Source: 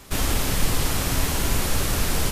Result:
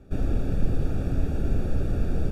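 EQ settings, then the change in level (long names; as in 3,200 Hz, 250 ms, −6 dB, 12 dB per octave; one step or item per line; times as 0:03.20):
moving average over 43 samples
0.0 dB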